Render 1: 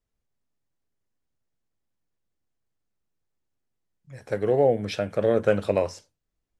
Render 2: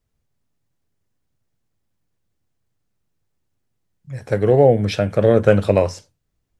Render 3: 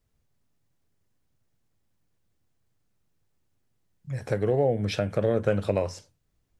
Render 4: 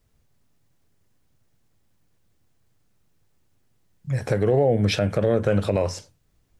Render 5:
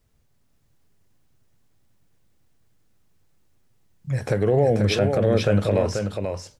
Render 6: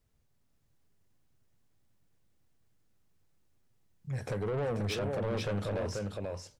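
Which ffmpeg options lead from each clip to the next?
-af "equalizer=f=110:w=0.89:g=7.5,volume=6.5dB"
-af "acompressor=threshold=-29dB:ratio=2"
-af "alimiter=limit=-18.5dB:level=0:latency=1:release=55,volume=7.5dB"
-af "aecho=1:1:486:0.531"
-af "asoftclip=type=tanh:threshold=-21dB,volume=-8dB"

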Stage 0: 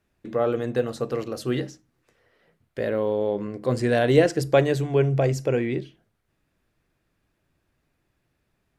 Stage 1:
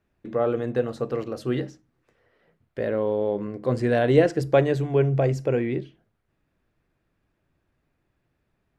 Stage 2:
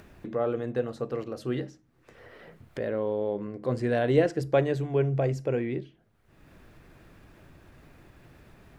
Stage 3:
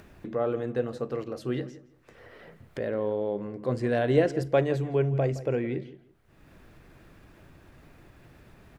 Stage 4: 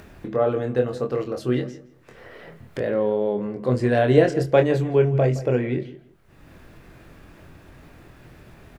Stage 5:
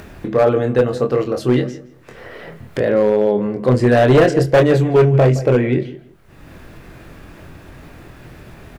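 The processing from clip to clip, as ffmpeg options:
-af "highshelf=f=3.8k:g=-10.5"
-af "acompressor=mode=upward:threshold=-28dB:ratio=2.5,volume=-4.5dB"
-filter_complex "[0:a]asplit=2[a][b];[b]adelay=167,lowpass=f=3k:p=1,volume=-16dB,asplit=2[c][d];[d]adelay=167,lowpass=f=3k:p=1,volume=0.21[e];[a][c][e]amix=inputs=3:normalize=0"
-filter_complex "[0:a]asplit=2[a][b];[b]adelay=24,volume=-6dB[c];[a][c]amix=inputs=2:normalize=0,volume=5.5dB"
-af "volume=14.5dB,asoftclip=hard,volume=-14.5dB,volume=8dB"

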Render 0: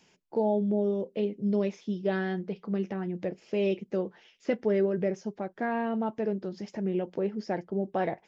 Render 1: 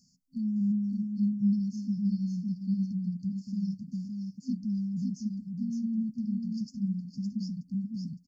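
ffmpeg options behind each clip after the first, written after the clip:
-filter_complex "[0:a]afftfilt=real='re*(1-between(b*sr/4096,260,4300))':imag='im*(1-between(b*sr/4096,260,4300))':win_size=4096:overlap=0.75,asplit=2[a][b];[b]aecho=0:1:562:0.596[c];[a][c]amix=inputs=2:normalize=0,volume=1.5dB"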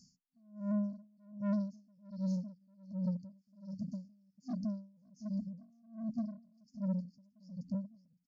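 -af "aresample=16000,asoftclip=type=tanh:threshold=-32dB,aresample=44100,aeval=exprs='val(0)*pow(10,-34*(0.5-0.5*cos(2*PI*1.3*n/s))/20)':c=same,volume=3dB"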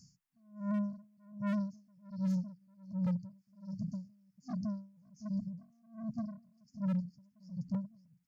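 -af "equalizer=f=125:t=o:w=1:g=10,equalizer=f=250:t=o:w=1:g=-8,equalizer=f=500:t=o:w=1:g=-8,equalizer=f=1k:t=o:w=1:g=4,equalizer=f=2k:t=o:w=1:g=4,equalizer=f=4k:t=o:w=1:g=-5,aeval=exprs='0.0299*(abs(mod(val(0)/0.0299+3,4)-2)-1)':c=same,volume=3.5dB"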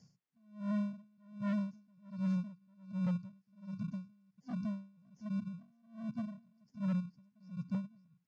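-filter_complex "[0:a]asplit=2[a][b];[b]acrusher=samples=35:mix=1:aa=0.000001,volume=-11dB[c];[a][c]amix=inputs=2:normalize=0,highpass=110,lowpass=4.4k,volume=-2.5dB"

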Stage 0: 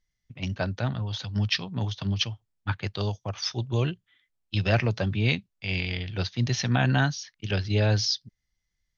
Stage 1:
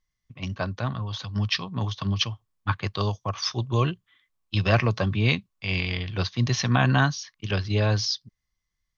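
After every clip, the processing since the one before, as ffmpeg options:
-af "equalizer=f=1.1k:w=6.7:g=13.5,dynaudnorm=f=280:g=13:m=3.5dB,volume=-1dB"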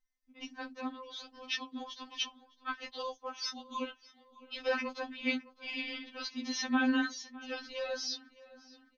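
-filter_complex "[0:a]asplit=2[a][b];[b]adelay=609,lowpass=f=4.1k:p=1,volume=-19dB,asplit=2[c][d];[d]adelay=609,lowpass=f=4.1k:p=1,volume=0.46,asplit=2[e][f];[f]adelay=609,lowpass=f=4.1k:p=1,volume=0.46,asplit=2[g][h];[h]adelay=609,lowpass=f=4.1k:p=1,volume=0.46[i];[a][c][e][g][i]amix=inputs=5:normalize=0,afftfilt=real='re*3.46*eq(mod(b,12),0)':imag='im*3.46*eq(mod(b,12),0)':win_size=2048:overlap=0.75,volume=-6.5dB"

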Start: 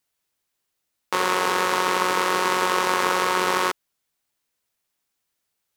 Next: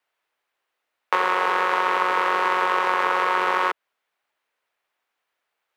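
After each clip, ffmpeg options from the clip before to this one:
-filter_complex "[0:a]acrossover=split=200[a][b];[b]acompressor=threshold=-23dB:ratio=6[c];[a][c]amix=inputs=2:normalize=0,acrossover=split=420 2900:gain=0.1 1 0.112[d][e][f];[d][e][f]amix=inputs=3:normalize=0,volume=8dB"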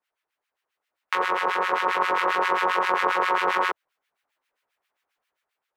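-filter_complex "[0:a]dynaudnorm=f=180:g=7:m=5dB,acrossover=split=1300[a][b];[a]aeval=exprs='val(0)*(1-1/2+1/2*cos(2*PI*7.5*n/s))':c=same[c];[b]aeval=exprs='val(0)*(1-1/2-1/2*cos(2*PI*7.5*n/s))':c=same[d];[c][d]amix=inputs=2:normalize=0"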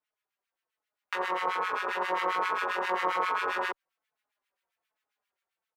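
-filter_complex "[0:a]asplit=2[a][b];[b]adelay=4.2,afreqshift=-1.2[c];[a][c]amix=inputs=2:normalize=1,volume=-3.5dB"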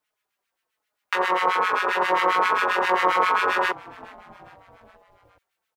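-filter_complex "[0:a]asplit=5[a][b][c][d][e];[b]adelay=415,afreqshift=-110,volume=-22.5dB[f];[c]adelay=830,afreqshift=-220,volume=-26.9dB[g];[d]adelay=1245,afreqshift=-330,volume=-31.4dB[h];[e]adelay=1660,afreqshift=-440,volume=-35.8dB[i];[a][f][g][h][i]amix=inputs=5:normalize=0,volume=8.5dB"

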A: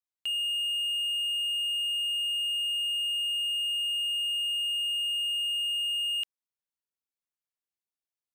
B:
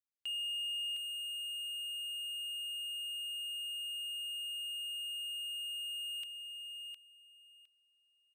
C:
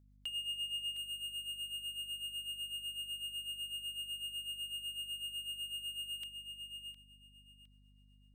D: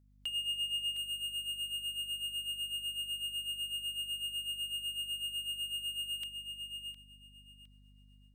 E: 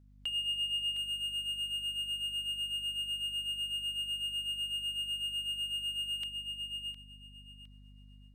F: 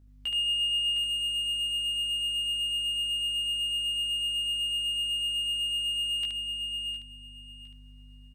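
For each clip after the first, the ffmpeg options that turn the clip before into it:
-af "aecho=1:1:710|1420|2130:0.447|0.0804|0.0145,volume=-8dB"
-af "tremolo=f=8:d=0.7,bandreject=f=2.6k:w=8.2,aeval=exprs='val(0)+0.000501*(sin(2*PI*50*n/s)+sin(2*PI*2*50*n/s)/2+sin(2*PI*3*50*n/s)/3+sin(2*PI*4*50*n/s)/4+sin(2*PI*5*50*n/s)/5)':c=same,volume=3dB"
-af "dynaudnorm=f=140:g=3:m=5dB,volume=-1dB"
-filter_complex "[0:a]lowpass=f=3.8k:p=1,asplit=2[a][b];[b]alimiter=level_in=14.5dB:limit=-24dB:level=0:latency=1,volume=-14.5dB,volume=-3dB[c];[a][c]amix=inputs=2:normalize=0,volume=1dB"
-af "aecho=1:1:17|73:0.708|0.668,volume=2.5dB"

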